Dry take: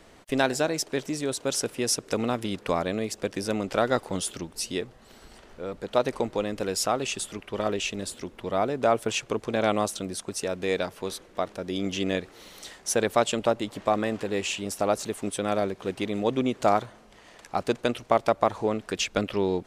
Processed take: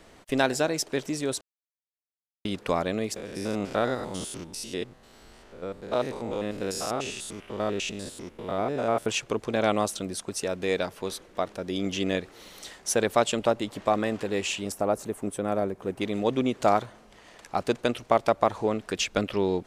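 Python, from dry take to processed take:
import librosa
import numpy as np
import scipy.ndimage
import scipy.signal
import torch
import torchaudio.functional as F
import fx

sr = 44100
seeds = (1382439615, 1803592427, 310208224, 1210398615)

y = fx.spec_steps(x, sr, hold_ms=100, at=(3.16, 9.06))
y = fx.peak_eq(y, sr, hz=4000.0, db=-12.0, octaves=2.1, at=(14.72, 16.01))
y = fx.edit(y, sr, fx.silence(start_s=1.41, length_s=1.04), tone=tone)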